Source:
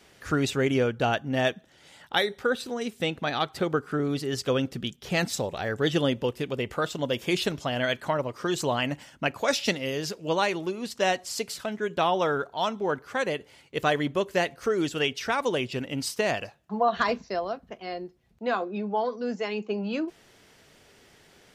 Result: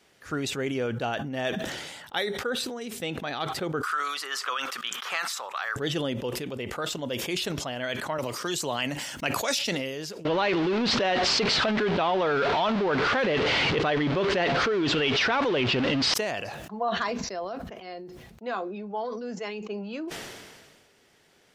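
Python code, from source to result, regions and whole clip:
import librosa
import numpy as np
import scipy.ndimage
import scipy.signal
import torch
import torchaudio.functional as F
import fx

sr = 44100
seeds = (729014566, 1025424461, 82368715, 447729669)

y = fx.chain(x, sr, fx.highpass_res(hz=1200.0, q=4.5),
    fx.band_squash(depth_pct=100), at=(3.83, 5.76))
y = fx.chain(y, sr, fx.high_shelf(hz=2700.0, db=8.5),
    fx.band_squash(depth_pct=40), at=(8.18, 9.59))
y = fx.chain(y, sr, fx.zero_step(step_db=-27.0),
    fx.lowpass(hz=4300.0, slope=24),
    fx.env_flatten(amount_pct=100), at=(10.25, 16.14))
y = fx.low_shelf(y, sr, hz=110.0, db=-7.5)
y = fx.sustainer(y, sr, db_per_s=34.0)
y = F.gain(torch.from_numpy(y), -5.0).numpy()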